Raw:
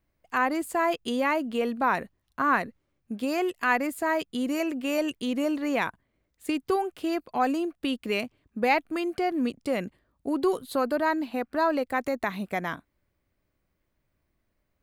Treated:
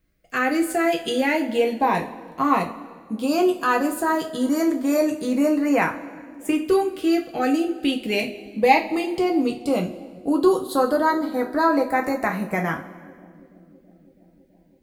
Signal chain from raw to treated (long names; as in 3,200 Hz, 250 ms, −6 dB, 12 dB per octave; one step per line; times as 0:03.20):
delay with a low-pass on its return 328 ms, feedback 75%, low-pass 410 Hz, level −20.5 dB
auto-filter notch saw up 0.15 Hz 860–4,400 Hz
coupled-rooms reverb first 0.28 s, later 1.7 s, from −18 dB, DRR 1 dB
level +4.5 dB